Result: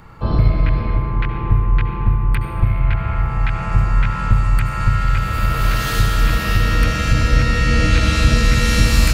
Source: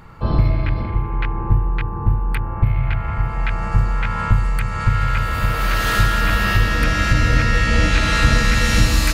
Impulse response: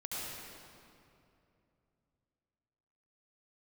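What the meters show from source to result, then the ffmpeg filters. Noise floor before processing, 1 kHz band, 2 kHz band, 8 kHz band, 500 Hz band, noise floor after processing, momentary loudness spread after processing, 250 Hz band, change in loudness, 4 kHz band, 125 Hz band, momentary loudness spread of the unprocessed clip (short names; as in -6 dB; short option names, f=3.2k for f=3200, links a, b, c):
-25 dBFS, -1.0 dB, -2.5 dB, +0.5 dB, +0.5 dB, -23 dBFS, 5 LU, +1.5 dB, +1.0 dB, 0.0 dB, +2.0 dB, 7 LU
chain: -filter_complex "[0:a]acrossover=split=490|3000[a][b][c];[b]acompressor=threshold=-25dB:ratio=6[d];[a][d][c]amix=inputs=3:normalize=0,asplit=2[e][f];[1:a]atrim=start_sample=2205[g];[f][g]afir=irnorm=-1:irlink=0,volume=-4.5dB[h];[e][h]amix=inputs=2:normalize=0,volume=-2dB"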